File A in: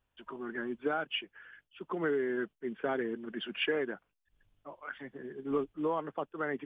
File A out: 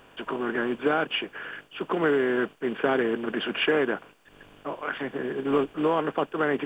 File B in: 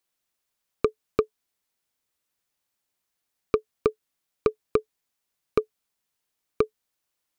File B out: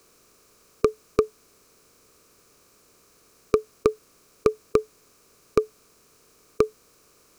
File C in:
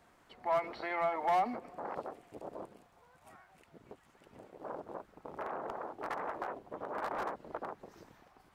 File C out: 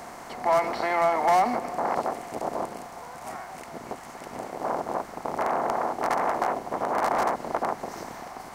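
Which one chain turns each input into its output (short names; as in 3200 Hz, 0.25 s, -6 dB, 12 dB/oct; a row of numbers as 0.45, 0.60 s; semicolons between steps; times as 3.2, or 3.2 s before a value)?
per-bin compression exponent 0.6; resonant high shelf 4600 Hz +7.5 dB, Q 1.5; match loudness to -27 LUFS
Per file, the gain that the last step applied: +6.5, +2.0, +7.5 dB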